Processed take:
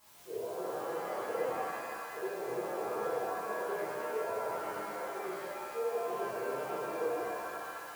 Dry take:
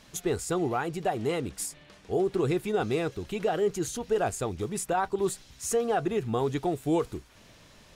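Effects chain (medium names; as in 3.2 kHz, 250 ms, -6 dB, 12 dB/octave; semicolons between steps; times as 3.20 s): reverse; compression 5:1, threshold -42 dBFS, peak gain reduction 18 dB; reverse; auto-wah 470–1000 Hz, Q 4.8, down, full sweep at -38 dBFS; added noise white -69 dBFS; pitch-shifted reverb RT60 2 s, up +7 st, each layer -2 dB, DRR -12 dB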